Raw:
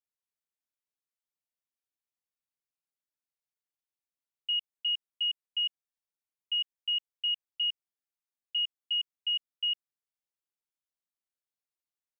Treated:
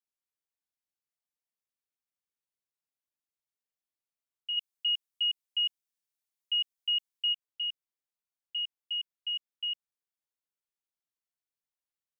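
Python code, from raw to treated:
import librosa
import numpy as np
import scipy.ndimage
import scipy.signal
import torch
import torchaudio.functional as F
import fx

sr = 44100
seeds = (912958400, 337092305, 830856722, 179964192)

y = fx.high_shelf(x, sr, hz=2600.0, db=8.5, at=(4.57, 7.33))
y = y * 10.0 ** (-3.5 / 20.0)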